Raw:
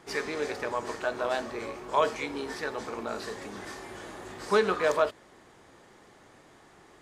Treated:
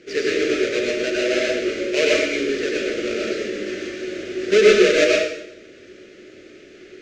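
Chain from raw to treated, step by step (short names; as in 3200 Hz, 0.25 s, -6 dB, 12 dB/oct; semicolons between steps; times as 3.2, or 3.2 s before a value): half-waves squared off; EQ curve 140 Hz 0 dB, 370 Hz +14 dB, 580 Hz +11 dB, 920 Hz -24 dB, 1400 Hz +7 dB, 2500 Hz +14 dB, 3500 Hz +9 dB, 6600 Hz +8 dB, 11000 Hz -20 dB; plate-style reverb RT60 0.77 s, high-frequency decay 0.95×, pre-delay 85 ms, DRR -4 dB; gain -8.5 dB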